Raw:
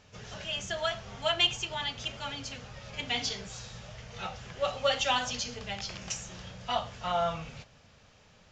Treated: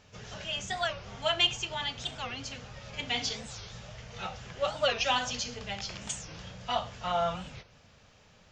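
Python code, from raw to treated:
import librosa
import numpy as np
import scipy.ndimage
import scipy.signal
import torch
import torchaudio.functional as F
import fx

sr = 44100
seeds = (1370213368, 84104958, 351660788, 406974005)

y = fx.record_warp(x, sr, rpm=45.0, depth_cents=250.0)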